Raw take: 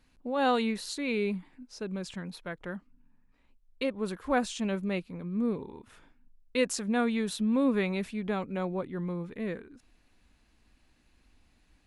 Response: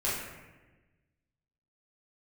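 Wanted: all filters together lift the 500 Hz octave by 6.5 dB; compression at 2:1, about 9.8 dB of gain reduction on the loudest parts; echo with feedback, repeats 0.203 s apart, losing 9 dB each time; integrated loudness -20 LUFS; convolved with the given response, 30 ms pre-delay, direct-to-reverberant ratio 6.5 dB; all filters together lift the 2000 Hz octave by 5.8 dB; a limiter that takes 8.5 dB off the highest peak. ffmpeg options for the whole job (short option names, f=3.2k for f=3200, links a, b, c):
-filter_complex "[0:a]equalizer=f=500:t=o:g=7,equalizer=f=2k:t=o:g=7,acompressor=threshold=-35dB:ratio=2,alimiter=level_in=3.5dB:limit=-24dB:level=0:latency=1,volume=-3.5dB,aecho=1:1:203|406|609|812:0.355|0.124|0.0435|0.0152,asplit=2[a][b];[1:a]atrim=start_sample=2205,adelay=30[c];[b][c]afir=irnorm=-1:irlink=0,volume=-15dB[d];[a][d]amix=inputs=2:normalize=0,volume=16dB"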